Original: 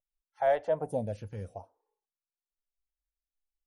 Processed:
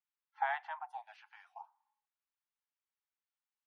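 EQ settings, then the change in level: steep high-pass 790 Hz 96 dB/oct; air absorption 320 m; +5.0 dB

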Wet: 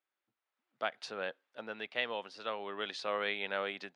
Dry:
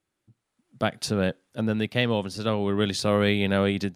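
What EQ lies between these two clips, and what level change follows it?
BPF 700–3300 Hz; -6.0 dB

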